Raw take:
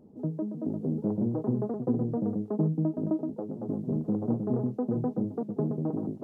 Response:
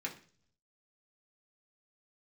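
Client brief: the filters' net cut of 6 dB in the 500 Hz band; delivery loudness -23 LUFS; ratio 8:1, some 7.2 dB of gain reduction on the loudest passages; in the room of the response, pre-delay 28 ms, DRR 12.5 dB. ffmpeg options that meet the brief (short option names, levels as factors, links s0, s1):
-filter_complex "[0:a]equalizer=f=500:t=o:g=-8,acompressor=threshold=0.0282:ratio=8,asplit=2[s0][s1];[1:a]atrim=start_sample=2205,adelay=28[s2];[s1][s2]afir=irnorm=-1:irlink=0,volume=0.2[s3];[s0][s3]amix=inputs=2:normalize=0,volume=5.01"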